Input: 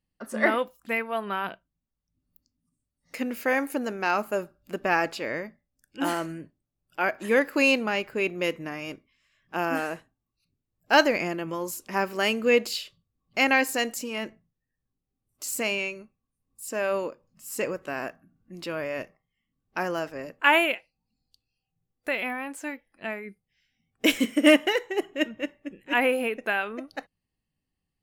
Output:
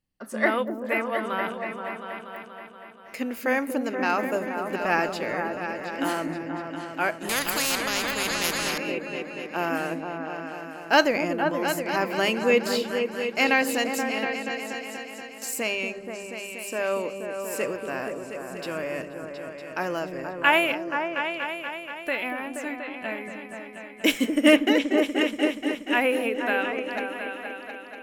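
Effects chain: notches 50/100/150/200 Hz; repeats that get brighter 0.239 s, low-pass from 400 Hz, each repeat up 2 oct, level -3 dB; 7.29–8.78 spectral compressor 4:1

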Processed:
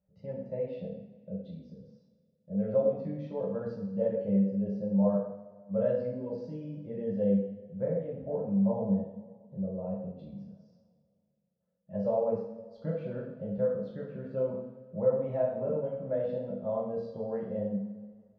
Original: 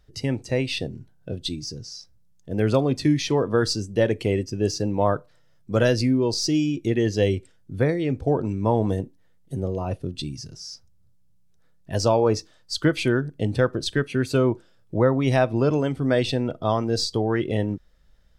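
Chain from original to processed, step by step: double band-pass 330 Hz, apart 1.4 oct; air absorption 170 m; two-slope reverb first 0.71 s, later 2.4 s, from -18 dB, DRR -6 dB; gain -6.5 dB

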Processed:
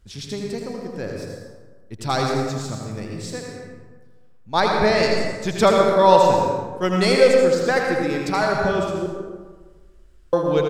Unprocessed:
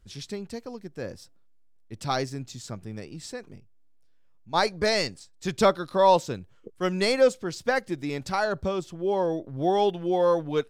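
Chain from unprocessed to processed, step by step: 4.6–5.03 tone controls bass +5 dB, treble -10 dB; echo 81 ms -6.5 dB; 9.06–10.33 room tone; plate-style reverb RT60 1.4 s, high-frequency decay 0.5×, pre-delay 90 ms, DRR 1.5 dB; 2.23–3.17 short-mantissa float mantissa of 6-bit; gain +4 dB

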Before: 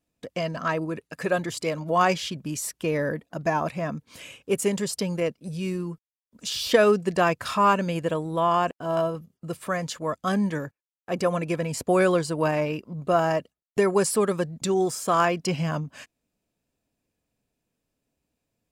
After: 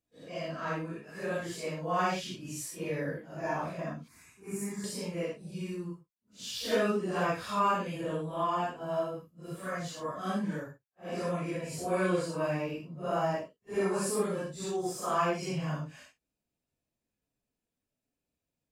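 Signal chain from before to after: phase scrambler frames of 0.2 s; 4.08–4.84 fixed phaser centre 1300 Hz, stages 4; gain -8 dB

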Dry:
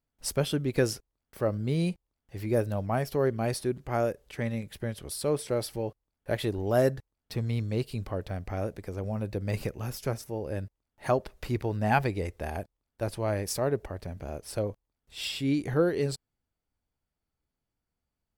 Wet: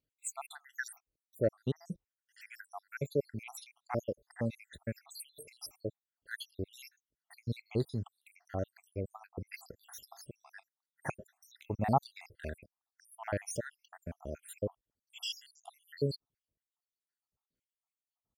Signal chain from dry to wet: random spectral dropouts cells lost 81%; HPF 68 Hz 6 dB/oct; gain -1 dB

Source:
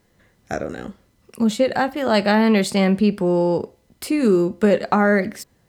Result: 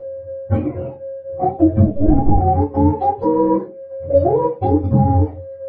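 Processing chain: spectrum mirrored in octaves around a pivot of 410 Hz; low-pass opened by the level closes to 1000 Hz, open at -15.5 dBFS; limiter -13 dBFS, peak gain reduction 7.5 dB; whine 540 Hz -34 dBFS; transient shaper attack +5 dB, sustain -11 dB; flange 0.59 Hz, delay 8.4 ms, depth 6.4 ms, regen -42%; 1.86–2.39 LPC vocoder at 8 kHz pitch kept; reverb RT60 0.25 s, pre-delay 3 ms, DRR -8 dB; gain -4 dB

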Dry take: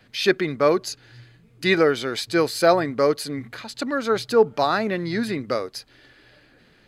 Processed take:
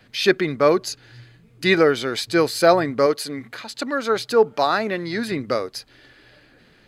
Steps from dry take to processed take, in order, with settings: 3.06–5.32 low shelf 160 Hz -11.5 dB; gain +2 dB

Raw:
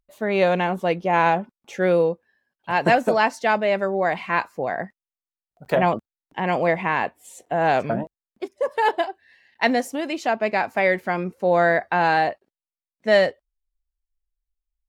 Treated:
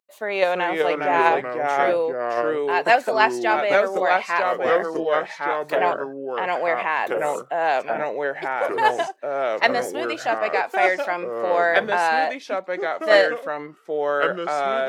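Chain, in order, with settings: HPF 520 Hz 12 dB/oct; in parallel at -3 dB: level quantiser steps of 18 dB; on the sum: echoes that change speed 0.298 s, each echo -3 st, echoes 2; gain -1 dB

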